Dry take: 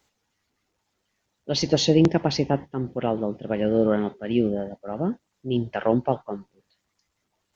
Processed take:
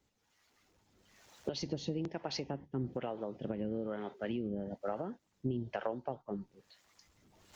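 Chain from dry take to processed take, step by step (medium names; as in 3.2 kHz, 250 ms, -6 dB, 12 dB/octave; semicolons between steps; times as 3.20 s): recorder AGC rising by 14 dB/s; 5.51–6.29 s: dynamic bell 2.1 kHz, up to -6 dB, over -42 dBFS, Q 1.2; compression 10:1, threshold -28 dBFS, peak gain reduction 16 dB; harmonic tremolo 1.1 Hz, depth 70%, crossover 410 Hz; trim -2 dB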